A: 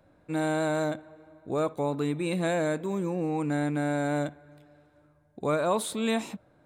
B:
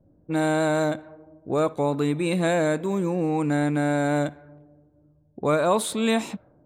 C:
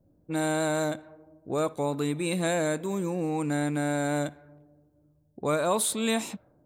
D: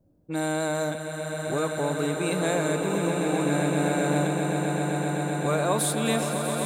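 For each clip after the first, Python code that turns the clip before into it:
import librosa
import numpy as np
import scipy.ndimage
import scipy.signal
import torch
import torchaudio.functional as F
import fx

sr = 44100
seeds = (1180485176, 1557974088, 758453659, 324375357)

y1 = fx.env_lowpass(x, sr, base_hz=330.0, full_db=-27.0)
y1 = y1 * librosa.db_to_amplitude(5.0)
y2 = fx.high_shelf(y1, sr, hz=5100.0, db=11.0)
y2 = y2 * librosa.db_to_amplitude(-5.0)
y3 = fx.echo_swell(y2, sr, ms=129, loudest=8, wet_db=-9.5)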